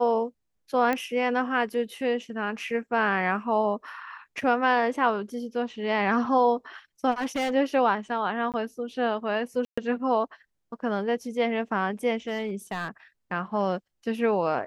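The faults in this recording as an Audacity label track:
0.930000	0.930000	pop -14 dBFS
4.410000	4.410000	dropout 3.6 ms
7.110000	7.530000	clipped -24 dBFS
8.520000	8.540000	dropout 18 ms
9.650000	9.780000	dropout 125 ms
12.270000	12.880000	clipped -25.5 dBFS

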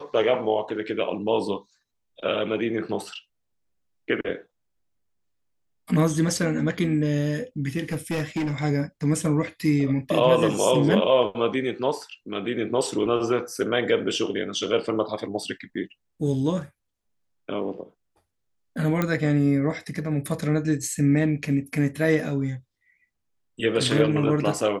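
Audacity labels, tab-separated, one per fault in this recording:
7.920000	8.640000	clipped -22 dBFS
19.020000	19.020000	pop -11 dBFS

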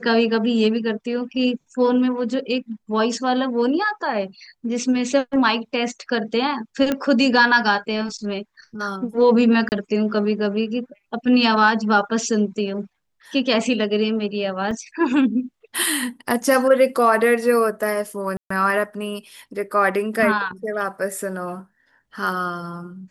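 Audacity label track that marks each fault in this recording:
6.920000	6.920000	pop -8 dBFS
9.690000	9.720000	dropout 29 ms
14.710000	14.710000	dropout 3 ms
18.370000	18.500000	dropout 134 ms

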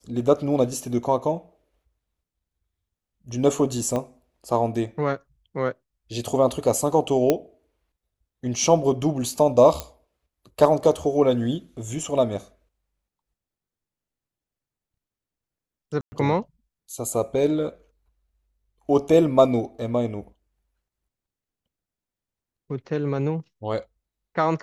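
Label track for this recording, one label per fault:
3.960000	3.960000	pop -15 dBFS
7.300000	7.300000	pop -6 dBFS
9.800000	9.800000	pop -12 dBFS
16.010000	16.120000	dropout 110 ms

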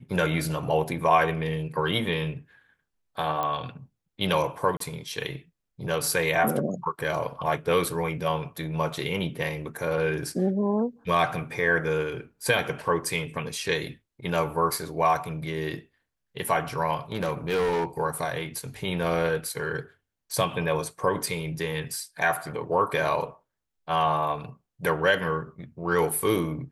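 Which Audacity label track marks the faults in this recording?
3.430000	3.430000	pop -16 dBFS
4.770000	4.800000	dropout 33 ms
17.120000	17.850000	clipped -22 dBFS

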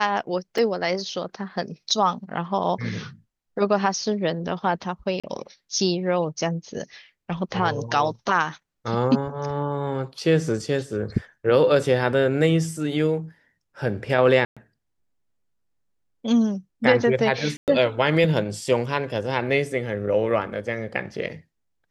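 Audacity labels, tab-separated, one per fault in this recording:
0.580000	0.580000	dropout 3.8 ms
5.200000	5.240000	dropout 36 ms
14.450000	14.570000	dropout 116 ms
17.570000	17.680000	dropout 108 ms

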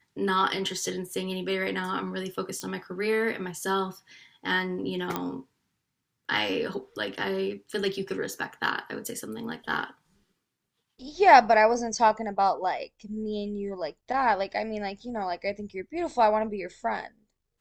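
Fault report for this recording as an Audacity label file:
2.600000	2.600000	pop -19 dBFS
5.160000	5.160000	pop -14 dBFS

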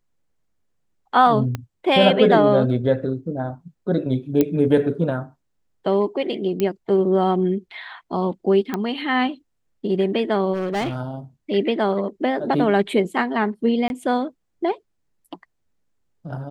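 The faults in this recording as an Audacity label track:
1.550000	1.550000	pop -13 dBFS
4.410000	4.410000	pop -6 dBFS
6.600000	6.600000	pop -10 dBFS
8.740000	8.740000	pop -11 dBFS
10.530000	11.010000	clipped -20.5 dBFS
13.880000	13.900000	dropout 21 ms

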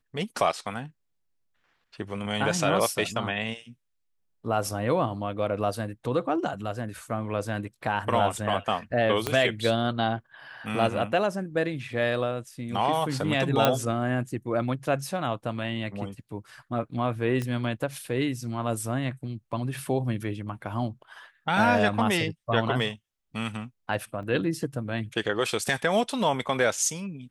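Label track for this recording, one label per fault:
9.270000	9.270000	pop -10 dBFS
13.650000	13.650000	pop -6 dBFS
17.420000	17.420000	pop -18 dBFS
24.230000	24.230000	dropout 2.7 ms

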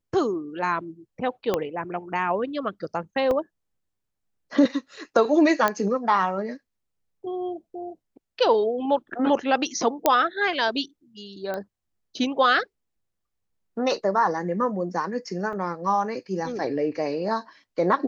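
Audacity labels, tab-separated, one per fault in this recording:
1.540000	1.540000	pop -10 dBFS
3.310000	3.310000	dropout 2.6 ms
5.680000	5.680000	pop -8 dBFS
10.060000	10.060000	pop -4 dBFS
11.540000	11.540000	pop -18 dBFS
15.530000	15.530000	dropout 2.6 ms

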